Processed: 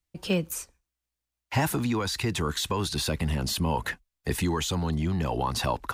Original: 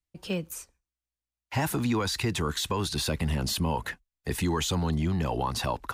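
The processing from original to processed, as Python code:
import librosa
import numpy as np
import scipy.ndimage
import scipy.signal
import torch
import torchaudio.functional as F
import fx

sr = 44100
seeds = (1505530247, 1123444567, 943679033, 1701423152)

y = fx.rider(x, sr, range_db=4, speed_s=0.5)
y = F.gain(torch.from_numpy(y), 1.0).numpy()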